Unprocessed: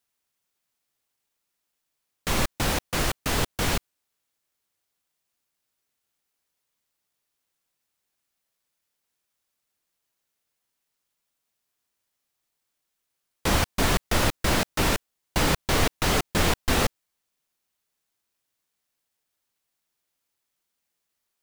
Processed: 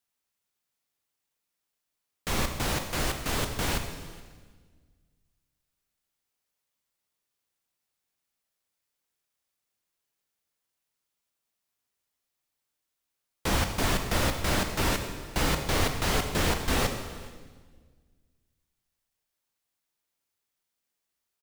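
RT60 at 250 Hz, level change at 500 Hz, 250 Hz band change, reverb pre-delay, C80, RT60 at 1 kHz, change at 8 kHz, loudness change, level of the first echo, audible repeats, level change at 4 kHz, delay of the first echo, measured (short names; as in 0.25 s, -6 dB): 1.9 s, -3.0 dB, -3.5 dB, 17 ms, 8.5 dB, 1.4 s, -3.5 dB, -3.5 dB, -23.5 dB, 1, -3.5 dB, 0.421 s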